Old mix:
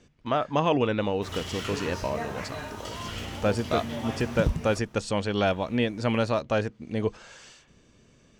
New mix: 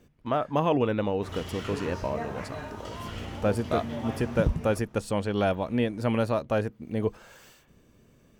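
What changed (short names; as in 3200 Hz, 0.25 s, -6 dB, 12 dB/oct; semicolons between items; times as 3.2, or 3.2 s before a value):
speech: remove LPF 7200 Hz 24 dB/oct; master: add high shelf 2200 Hz -9 dB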